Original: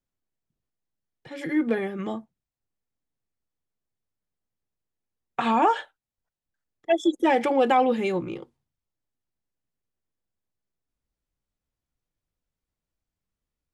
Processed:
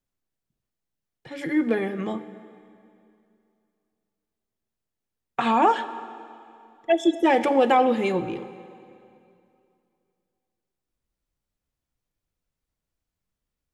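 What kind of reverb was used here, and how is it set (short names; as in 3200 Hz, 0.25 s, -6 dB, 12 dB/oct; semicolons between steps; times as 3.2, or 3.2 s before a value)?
plate-style reverb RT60 2.6 s, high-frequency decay 0.9×, DRR 12.5 dB; gain +1.5 dB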